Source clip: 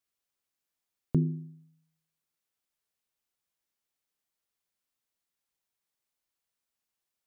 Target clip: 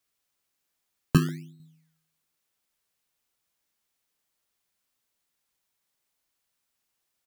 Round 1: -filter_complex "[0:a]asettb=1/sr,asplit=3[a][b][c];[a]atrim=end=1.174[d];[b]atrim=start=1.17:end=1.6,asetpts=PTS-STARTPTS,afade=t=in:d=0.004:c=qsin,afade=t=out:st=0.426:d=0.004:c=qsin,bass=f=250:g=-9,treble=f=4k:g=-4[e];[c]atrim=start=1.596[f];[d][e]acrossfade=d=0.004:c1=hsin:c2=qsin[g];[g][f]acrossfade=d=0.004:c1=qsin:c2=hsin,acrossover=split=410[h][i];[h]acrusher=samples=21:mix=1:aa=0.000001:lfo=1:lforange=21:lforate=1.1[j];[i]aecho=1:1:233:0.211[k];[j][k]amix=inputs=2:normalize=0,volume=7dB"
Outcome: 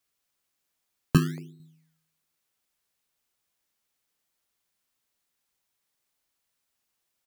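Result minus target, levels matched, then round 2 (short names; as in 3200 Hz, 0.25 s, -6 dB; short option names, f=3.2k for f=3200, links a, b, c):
echo 92 ms late
-filter_complex "[0:a]asettb=1/sr,asplit=3[a][b][c];[a]atrim=end=1.174[d];[b]atrim=start=1.17:end=1.6,asetpts=PTS-STARTPTS,afade=t=in:d=0.004:c=qsin,afade=t=out:st=0.426:d=0.004:c=qsin,bass=f=250:g=-9,treble=f=4k:g=-4[e];[c]atrim=start=1.596[f];[d][e]acrossfade=d=0.004:c1=hsin:c2=qsin[g];[g][f]acrossfade=d=0.004:c1=qsin:c2=hsin,acrossover=split=410[h][i];[h]acrusher=samples=21:mix=1:aa=0.000001:lfo=1:lforange=21:lforate=1.1[j];[i]aecho=1:1:141:0.211[k];[j][k]amix=inputs=2:normalize=0,volume=7dB"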